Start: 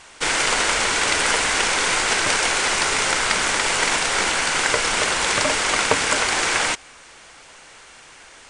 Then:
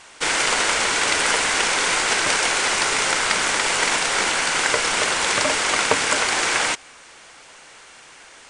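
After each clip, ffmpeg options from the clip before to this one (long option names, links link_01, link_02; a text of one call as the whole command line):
ffmpeg -i in.wav -af "lowshelf=frequency=93:gain=-8.5" out.wav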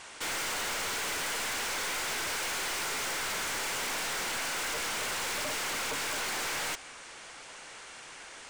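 ffmpeg -i in.wav -af "aeval=exprs='(tanh(35.5*val(0)+0.15)-tanh(0.15))/35.5':channel_layout=same,volume=-1.5dB" out.wav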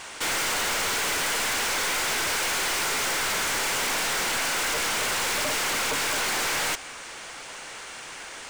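ffmpeg -i in.wav -af "acrusher=bits=5:mode=log:mix=0:aa=0.000001,volume=7.5dB" out.wav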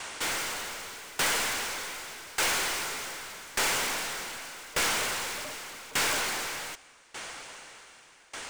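ffmpeg -i in.wav -af "aeval=exprs='val(0)*pow(10,-22*if(lt(mod(0.84*n/s,1),2*abs(0.84)/1000),1-mod(0.84*n/s,1)/(2*abs(0.84)/1000),(mod(0.84*n/s,1)-2*abs(0.84)/1000)/(1-2*abs(0.84)/1000))/20)':channel_layout=same,volume=1.5dB" out.wav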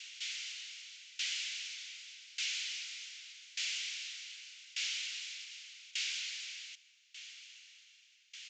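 ffmpeg -i in.wav -af "asuperpass=centerf=5400:order=8:qfactor=0.7,aemphasis=mode=reproduction:type=50fm,aresample=16000,aresample=44100,volume=-1.5dB" out.wav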